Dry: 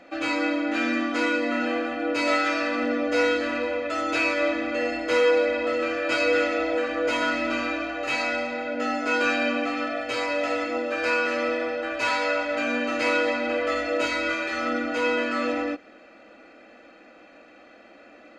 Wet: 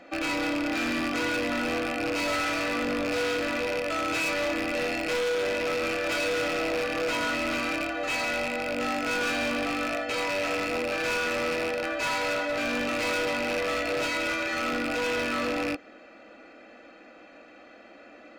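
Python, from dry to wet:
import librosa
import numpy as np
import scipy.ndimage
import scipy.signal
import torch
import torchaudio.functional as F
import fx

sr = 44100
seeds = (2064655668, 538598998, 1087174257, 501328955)

y = fx.rattle_buzz(x, sr, strikes_db=-39.0, level_db=-17.0)
y = np.clip(y, -10.0 ** (-25.5 / 20.0), 10.0 ** (-25.5 / 20.0))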